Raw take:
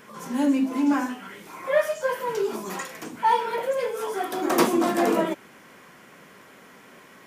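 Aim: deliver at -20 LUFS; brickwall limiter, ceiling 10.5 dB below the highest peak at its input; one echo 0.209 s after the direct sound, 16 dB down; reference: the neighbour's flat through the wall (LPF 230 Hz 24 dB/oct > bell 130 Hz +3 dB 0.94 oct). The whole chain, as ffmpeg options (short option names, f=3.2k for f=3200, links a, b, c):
-af "alimiter=limit=-16dB:level=0:latency=1,lowpass=f=230:w=0.5412,lowpass=f=230:w=1.3066,equalizer=f=130:t=o:w=0.94:g=3,aecho=1:1:209:0.158,volume=16dB"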